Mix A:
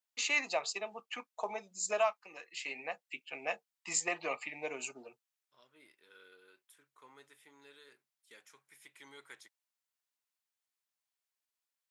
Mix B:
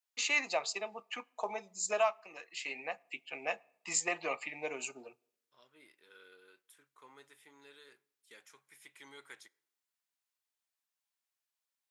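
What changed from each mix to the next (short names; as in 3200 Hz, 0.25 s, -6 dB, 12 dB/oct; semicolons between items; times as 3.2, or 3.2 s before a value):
reverb: on, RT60 0.80 s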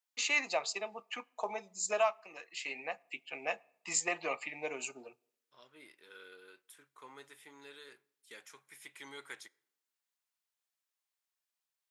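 second voice +5.0 dB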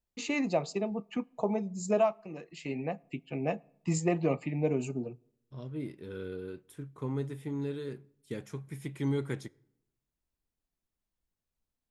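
first voice -6.5 dB; master: remove HPF 1200 Hz 12 dB/oct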